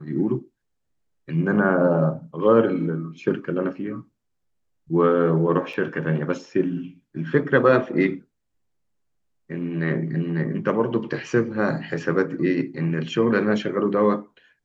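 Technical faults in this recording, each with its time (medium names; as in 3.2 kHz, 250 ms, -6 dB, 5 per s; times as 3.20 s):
5.73–5.74 s: dropout 5 ms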